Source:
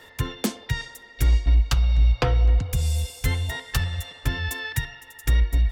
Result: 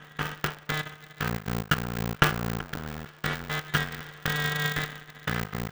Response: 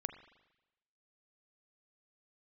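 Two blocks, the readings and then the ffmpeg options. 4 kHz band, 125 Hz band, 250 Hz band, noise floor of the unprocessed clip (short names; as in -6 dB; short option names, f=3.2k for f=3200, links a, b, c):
0.0 dB, -9.0 dB, +1.0 dB, -49 dBFS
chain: -filter_complex "[0:a]tiltshelf=f=710:g=-7.5,asplit=2[a][b];[b]adynamicsmooth=sensitivity=7:basefreq=960,volume=0dB[c];[a][c]amix=inputs=2:normalize=0,lowpass=f=1.5k:t=q:w=13,aeval=exprs='max(val(0),0)':c=same,aeval=exprs='val(0)*sgn(sin(2*PI*150*n/s))':c=same,volume=-10.5dB"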